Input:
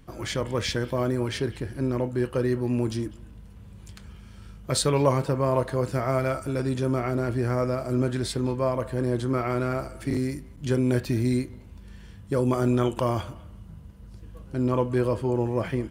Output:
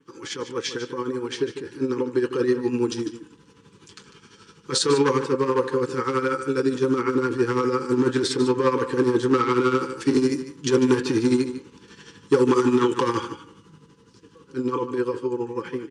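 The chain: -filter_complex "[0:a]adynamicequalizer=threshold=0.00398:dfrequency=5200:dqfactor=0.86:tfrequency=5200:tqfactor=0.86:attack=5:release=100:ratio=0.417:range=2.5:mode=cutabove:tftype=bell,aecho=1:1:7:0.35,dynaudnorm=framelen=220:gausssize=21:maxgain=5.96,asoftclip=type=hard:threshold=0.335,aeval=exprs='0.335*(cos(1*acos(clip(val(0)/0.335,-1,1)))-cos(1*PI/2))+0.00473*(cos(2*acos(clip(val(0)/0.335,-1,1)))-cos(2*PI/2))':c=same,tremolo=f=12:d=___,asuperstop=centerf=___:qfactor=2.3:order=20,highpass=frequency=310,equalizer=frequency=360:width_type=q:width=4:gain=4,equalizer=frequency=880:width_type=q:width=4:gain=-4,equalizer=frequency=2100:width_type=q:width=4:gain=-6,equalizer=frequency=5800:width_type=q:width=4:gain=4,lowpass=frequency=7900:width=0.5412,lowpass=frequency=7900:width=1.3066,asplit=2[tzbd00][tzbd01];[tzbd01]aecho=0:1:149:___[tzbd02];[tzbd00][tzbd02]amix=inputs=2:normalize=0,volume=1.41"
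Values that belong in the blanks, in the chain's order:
0.64, 660, 0.251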